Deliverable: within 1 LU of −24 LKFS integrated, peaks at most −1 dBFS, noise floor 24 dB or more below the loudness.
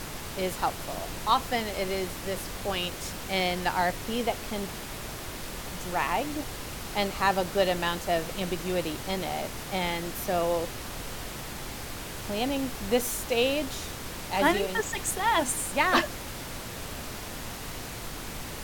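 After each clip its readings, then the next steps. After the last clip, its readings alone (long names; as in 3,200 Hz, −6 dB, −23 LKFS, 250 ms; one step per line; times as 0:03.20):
background noise floor −39 dBFS; target noise floor −54 dBFS; integrated loudness −30.0 LKFS; sample peak −10.0 dBFS; target loudness −24.0 LKFS
→ noise reduction from a noise print 15 dB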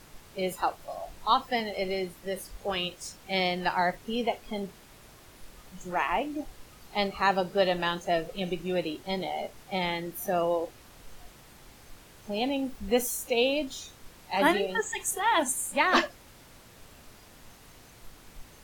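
background noise floor −53 dBFS; integrated loudness −29.0 LKFS; sample peak −10.5 dBFS; target loudness −24.0 LKFS
→ level +5 dB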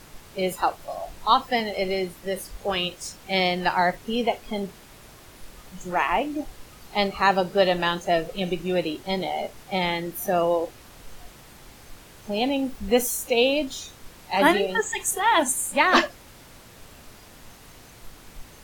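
integrated loudness −24.0 LKFS; sample peak −5.5 dBFS; background noise floor −48 dBFS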